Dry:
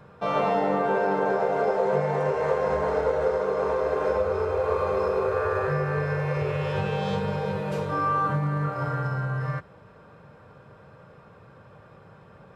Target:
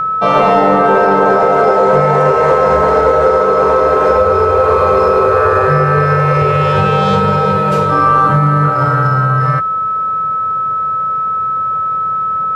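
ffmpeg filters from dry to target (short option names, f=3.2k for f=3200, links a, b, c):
-af "aeval=exprs='val(0)+0.0447*sin(2*PI*1300*n/s)':c=same,apsyclip=17dB,volume=-3dB"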